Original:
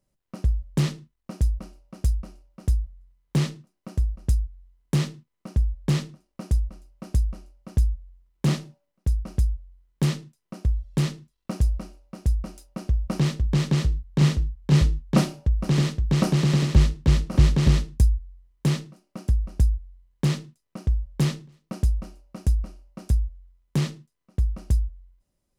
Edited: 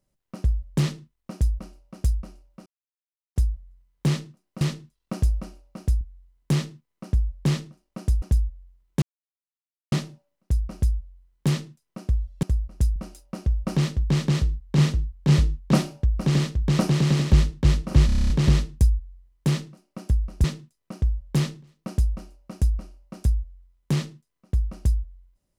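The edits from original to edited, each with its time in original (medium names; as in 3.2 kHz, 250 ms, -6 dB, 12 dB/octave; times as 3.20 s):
2.66 s: insert silence 0.70 s
3.91–4.44 s: swap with 10.99–12.39 s
6.65–7.68 s: delete
8.48 s: insert silence 0.90 s
17.49 s: stutter 0.03 s, 9 plays
19.63–20.29 s: delete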